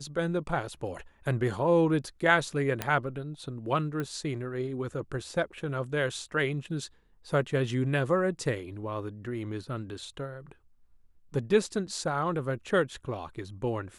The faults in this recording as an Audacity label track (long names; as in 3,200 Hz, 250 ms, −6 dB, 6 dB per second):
2.820000	2.820000	click −13 dBFS
4.000000	4.000000	click −21 dBFS